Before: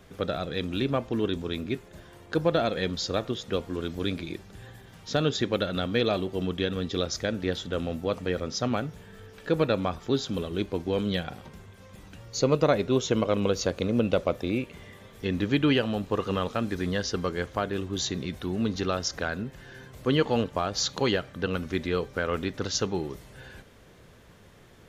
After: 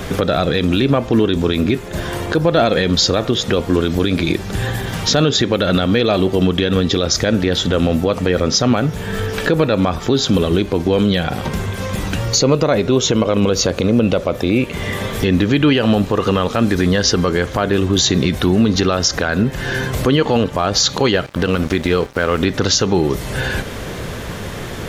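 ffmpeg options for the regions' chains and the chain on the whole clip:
-filter_complex "[0:a]asettb=1/sr,asplit=3[s0][s1][s2];[s0]atrim=end=21.264[s3];[s1]atrim=start=21.26:end=22.4,asetpts=PTS-STARTPTS,afade=t=in:d=0.004:c=qsin,afade=t=out:st=1.136:d=0.004:c=qsin,acompressor=mode=upward:threshold=0.00631:ratio=2.5:attack=3.2:release=140:knee=2.83:detection=peak,aeval=exprs='sgn(val(0))*max(abs(val(0))-0.00562,0)':c=same[s4];[s2]atrim=start=22.396[s5];[s3][s4]acrossfade=d=0.004:c1=hsin:c2=qsin[s6];[s6][s5]acrossfade=d=0.004:c1=qsin:c2=hsin,acompressor=threshold=0.00631:ratio=2,alimiter=level_in=33.5:limit=0.891:release=50:level=0:latency=1,volume=0.668"

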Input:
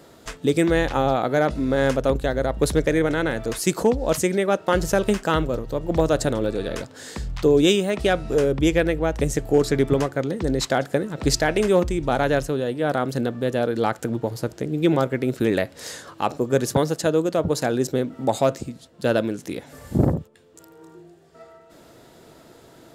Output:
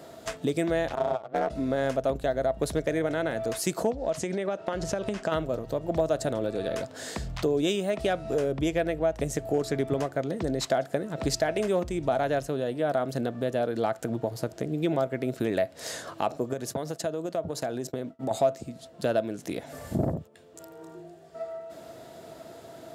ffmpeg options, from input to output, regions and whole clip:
-filter_complex "[0:a]asettb=1/sr,asplit=3[s0][s1][s2];[s0]atrim=end=0.954[s3];[s1]atrim=start=0.95:end=1.5,asetpts=PTS-STARTPTS,afade=t=in:d=0.004:c=qsin,afade=t=out:st=0.546:d=0.004:c=qsin,aeval=exprs='val(0)*sin(2*PI*120*n/s)':c=same,adynamicsmooth=sensitivity=4.5:basefreq=1400,agate=range=0.158:threshold=0.0631:ratio=16:release=100:detection=peak[s4];[s2]atrim=start=1.496[s5];[s3][s4]acrossfade=d=0.004:c1=hsin:c2=qsin[s6];[s6][s5]acrossfade=d=0.004:c1=qsin:c2=hsin,asettb=1/sr,asplit=3[s7][s8][s9];[s7]atrim=end=3.914[s10];[s8]atrim=start=3.91:end=5.32,asetpts=PTS-STARTPTS,afade=t=in:d=0.004:c=qsin,afade=t=out:st=1.406:d=0.004:c=qsin,lowpass=6800,acompressor=threshold=0.0891:ratio=6:attack=3.2:release=140:knee=1:detection=peak[s11];[s9]atrim=start=5.316[s12];[s10][s11]acrossfade=d=0.004:c1=hsin:c2=qsin[s13];[s13][s12]acrossfade=d=0.004:c1=qsin:c2=hsin,asettb=1/sr,asplit=3[s14][s15][s16];[s14]atrim=end=16.534[s17];[s15]atrim=start=16.53:end=18.31,asetpts=PTS-STARTPTS,afade=t=in:d=0.004:c=qsin,afade=t=out:st=1.776:d=0.004:c=qsin,agate=range=0.0224:threshold=0.0447:ratio=3:release=100:detection=peak,acompressor=threshold=0.0398:ratio=3:attack=3.2:release=140:knee=1:detection=peak[s18];[s16]atrim=start=18.306[s19];[s17][s18]acrossfade=d=0.004:c1=hsin:c2=qsin[s20];[s20][s19]acrossfade=d=0.004:c1=qsin:c2=hsin,highpass=67,equalizer=f=660:t=o:w=0.2:g=12.5,acompressor=threshold=0.0316:ratio=2"

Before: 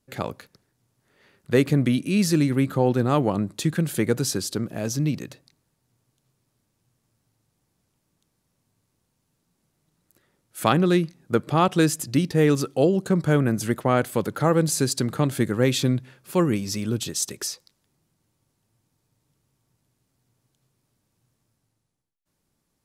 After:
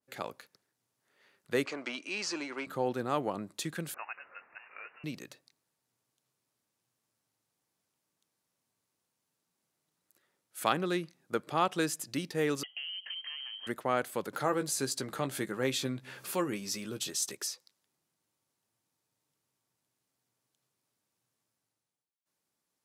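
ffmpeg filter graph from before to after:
-filter_complex "[0:a]asettb=1/sr,asplit=3[s0][s1][s2];[s0]atrim=end=1.654[s3];[s1]atrim=start=1.65:end=2.67,asetpts=PTS-STARTPTS,afade=t=in:d=0.004:c=qsin,afade=t=out:st=1.016:d=0.004:c=qsin,asplit=2[s4][s5];[s5]highpass=f=720:p=1,volume=5.01,asoftclip=type=tanh:threshold=0.355[s6];[s4][s6]amix=inputs=2:normalize=0,lowpass=f=4400:p=1,volume=0.501,highpass=410,equalizer=f=510:t=q:w=4:g=-5,equalizer=f=1800:t=q:w=4:g=-7,equalizer=f=3600:t=q:w=4:g=-9,lowpass=f=6900:w=0.5412,lowpass=f=6900:w=1.3066[s7];[s2]atrim=start=2.666[s8];[s3][s7]acrossfade=d=0.004:c1=hsin:c2=qsin[s9];[s9][s8]acrossfade=d=0.004:c1=qsin:c2=hsin,asettb=1/sr,asplit=3[s10][s11][s12];[s10]atrim=end=3.944[s13];[s11]atrim=start=3.94:end=5.04,asetpts=PTS-STARTPTS,afade=t=in:d=0.004:c=qsin,afade=t=out:st=1.096:d=0.004:c=qsin,aeval=exprs='val(0)+0.5*0.0178*sgn(val(0))':c=same,highpass=1200,lowpass=f=2600:t=q:w=0.5098,lowpass=f=2600:t=q:w=0.6013,lowpass=f=2600:t=q:w=0.9,lowpass=f=2600:t=q:w=2.563,afreqshift=-3000[s14];[s12]atrim=start=5.036[s15];[s13][s14]acrossfade=d=0.004:c1=hsin:c2=qsin[s16];[s16][s15]acrossfade=d=0.004:c1=qsin:c2=hsin,asettb=1/sr,asplit=3[s17][s18][s19];[s17]atrim=end=12.634[s20];[s18]atrim=start=12.63:end=13.67,asetpts=PTS-STARTPTS,afade=t=in:d=0.004:c=qsin,afade=t=out:st=1.036:d=0.004:c=qsin,acompressor=threshold=0.0398:ratio=16:attack=3.2:release=140:knee=1:detection=peak,aeval=exprs='clip(val(0),-1,0.0398)':c=same,lowpass=f=2800:t=q:w=0.5098,lowpass=f=2800:t=q:w=0.6013,lowpass=f=2800:t=q:w=0.9,lowpass=f=2800:t=q:w=2.563,afreqshift=-3300[s21];[s19]atrim=start=13.666[s22];[s20][s21]acrossfade=d=0.004:c1=hsin:c2=qsin[s23];[s23][s22]acrossfade=d=0.004:c1=qsin:c2=hsin,asettb=1/sr,asplit=3[s24][s25][s26];[s24]atrim=end=14.334[s27];[s25]atrim=start=14.33:end=17.35,asetpts=PTS-STARTPTS,afade=t=in:d=0.004:c=qsin,afade=t=out:st=3.016:d=0.004:c=qsin,acompressor=mode=upward:threshold=0.0708:ratio=2.5:attack=3.2:release=140:knee=2.83:detection=peak,asplit=2[s28][s29];[s29]adelay=15,volume=0.355[s30];[s28][s30]amix=inputs=2:normalize=0,atrim=end_sample=133182[s31];[s26]atrim=start=17.346[s32];[s27][s31]acrossfade=d=0.004:c1=hsin:c2=qsin[s33];[s33][s32]acrossfade=d=0.004:c1=qsin:c2=hsin,highpass=f=590:p=1,adynamicequalizer=threshold=0.0141:dfrequency=2400:dqfactor=0.7:tfrequency=2400:tqfactor=0.7:attack=5:release=100:ratio=0.375:range=2:mode=cutabove:tftype=highshelf,volume=0.501"

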